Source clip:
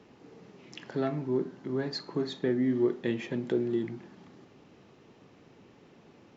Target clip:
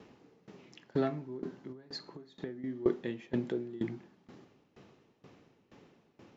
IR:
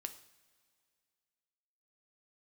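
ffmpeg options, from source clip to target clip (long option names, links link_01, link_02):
-filter_complex "[0:a]asettb=1/sr,asplit=3[link_01][link_02][link_03];[link_01]atrim=end=1.724[link_04];[link_02]atrim=start=1.72:end=2.64,asetpts=PTS-STARTPTS,afade=type=in:duration=0.004:curve=qsin,afade=type=out:start_time=0.916:duration=0.004:curve=qsin,acompressor=threshold=-38dB:ratio=5[link_05];[link_03]atrim=start=2.636[link_06];[link_04][link_05]acrossfade=duration=0.004:curve1=hsin:curve2=qsin[link_07];[link_07][link_06]acrossfade=duration=0.004:curve1=qsin:curve2=hsin,aeval=exprs='val(0)*pow(10,-20*if(lt(mod(2.1*n/s,1),2*abs(2.1)/1000),1-mod(2.1*n/s,1)/(2*abs(2.1)/1000),(mod(2.1*n/s,1)-2*abs(2.1)/1000)/(1-2*abs(2.1)/1000))/20)':channel_layout=same,volume=2.5dB"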